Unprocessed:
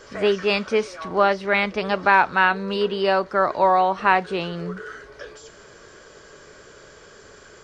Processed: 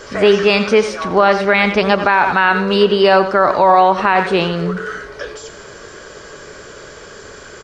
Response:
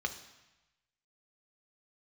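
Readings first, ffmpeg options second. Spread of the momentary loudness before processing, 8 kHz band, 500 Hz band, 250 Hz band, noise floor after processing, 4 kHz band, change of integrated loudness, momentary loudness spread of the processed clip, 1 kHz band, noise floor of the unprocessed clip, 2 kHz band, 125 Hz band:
17 LU, n/a, +8.5 dB, +10.0 dB, -37 dBFS, +9.0 dB, +7.0 dB, 15 LU, +6.5 dB, -48 dBFS, +6.0 dB, +10.0 dB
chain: -filter_complex "[0:a]asplit=2[a][b];[b]adelay=100,highpass=300,lowpass=3.4k,asoftclip=type=hard:threshold=-12dB,volume=-24dB[c];[a][c]amix=inputs=2:normalize=0,asplit=2[d][e];[1:a]atrim=start_sample=2205,adelay=88[f];[e][f]afir=irnorm=-1:irlink=0,volume=-15.5dB[g];[d][g]amix=inputs=2:normalize=0,alimiter=level_in=11.5dB:limit=-1dB:release=50:level=0:latency=1,volume=-1dB"

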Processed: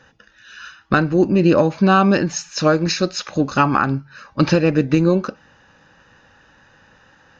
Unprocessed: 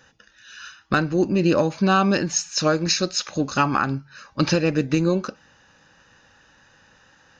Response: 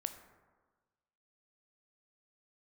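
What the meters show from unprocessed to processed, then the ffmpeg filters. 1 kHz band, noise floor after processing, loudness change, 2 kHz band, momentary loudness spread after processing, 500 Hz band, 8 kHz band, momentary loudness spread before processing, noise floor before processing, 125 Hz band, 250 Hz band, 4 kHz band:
+4.0 dB, -53 dBFS, +4.0 dB, +3.5 dB, 8 LU, +5.0 dB, n/a, 13 LU, -57 dBFS, +5.0 dB, +5.0 dB, -1.0 dB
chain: -af "lowpass=f=2.5k:p=1,volume=5dB"

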